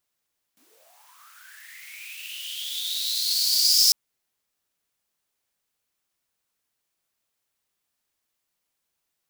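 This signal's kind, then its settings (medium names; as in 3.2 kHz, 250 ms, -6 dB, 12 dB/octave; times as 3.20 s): swept filtered noise white, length 3.35 s highpass, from 200 Hz, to 5.2 kHz, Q 11, linear, gain ramp +39.5 dB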